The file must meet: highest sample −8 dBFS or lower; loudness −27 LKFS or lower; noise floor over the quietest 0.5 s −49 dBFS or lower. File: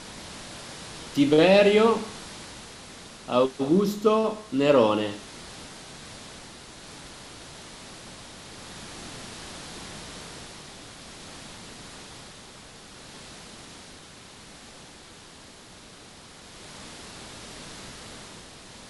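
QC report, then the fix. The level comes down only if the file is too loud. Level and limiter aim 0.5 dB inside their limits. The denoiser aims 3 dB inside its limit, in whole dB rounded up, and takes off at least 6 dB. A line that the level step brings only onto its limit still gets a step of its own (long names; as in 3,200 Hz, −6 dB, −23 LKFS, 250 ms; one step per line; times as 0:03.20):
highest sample −5.5 dBFS: out of spec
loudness −23.0 LKFS: out of spec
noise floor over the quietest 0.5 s −48 dBFS: out of spec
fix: level −4.5 dB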